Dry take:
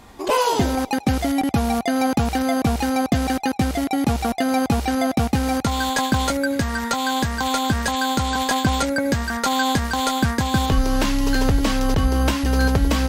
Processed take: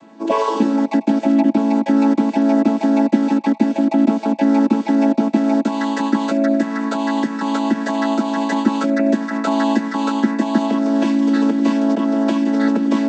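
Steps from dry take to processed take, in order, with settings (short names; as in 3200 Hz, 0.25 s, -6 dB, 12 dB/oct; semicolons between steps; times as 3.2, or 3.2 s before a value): chord vocoder major triad, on A3; gain +6 dB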